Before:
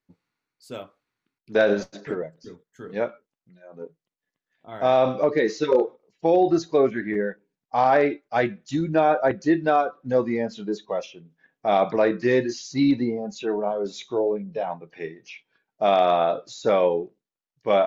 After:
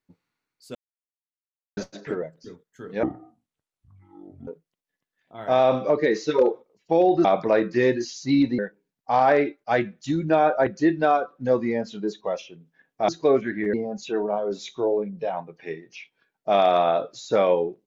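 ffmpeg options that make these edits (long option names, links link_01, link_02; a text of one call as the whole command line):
ffmpeg -i in.wav -filter_complex "[0:a]asplit=9[link_01][link_02][link_03][link_04][link_05][link_06][link_07][link_08][link_09];[link_01]atrim=end=0.75,asetpts=PTS-STARTPTS,afade=type=out:start_time=0.746:duration=0.004:curve=hsin[link_10];[link_02]atrim=start=0.75:end=1.77,asetpts=PTS-STARTPTS,volume=0[link_11];[link_03]atrim=start=1.77:end=3.034,asetpts=PTS-STARTPTS,afade=type=in:duration=0.004:curve=hsin[link_12];[link_04]atrim=start=3.03:end=3.81,asetpts=PTS-STARTPTS,asetrate=23814,aresample=44100[link_13];[link_05]atrim=start=3.806:end=6.582[link_14];[link_06]atrim=start=11.728:end=13.072[link_15];[link_07]atrim=start=7.228:end=11.732[link_16];[link_08]atrim=start=6.578:end=7.232[link_17];[link_09]atrim=start=13.068[link_18];[link_10][link_11][link_12]concat=n=3:v=0:a=1[link_19];[link_19][link_13]acrossfade=duration=0.004:curve1=hsin:curve2=hsin[link_20];[link_20][link_14]acrossfade=duration=0.004:curve1=hsin:curve2=hsin[link_21];[link_21][link_15]acrossfade=duration=0.004:curve1=hsin:curve2=hsin[link_22];[link_22][link_16]acrossfade=duration=0.004:curve1=hsin:curve2=hsin[link_23];[link_23][link_17]acrossfade=duration=0.004:curve1=hsin:curve2=hsin[link_24];[link_24][link_18]acrossfade=duration=0.004:curve1=hsin:curve2=hsin" out.wav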